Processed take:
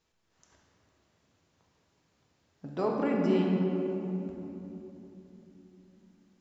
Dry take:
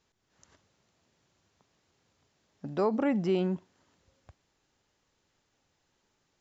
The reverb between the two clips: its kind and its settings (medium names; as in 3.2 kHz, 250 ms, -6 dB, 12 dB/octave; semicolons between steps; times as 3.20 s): simulated room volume 180 m³, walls hard, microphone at 0.59 m; trim -3.5 dB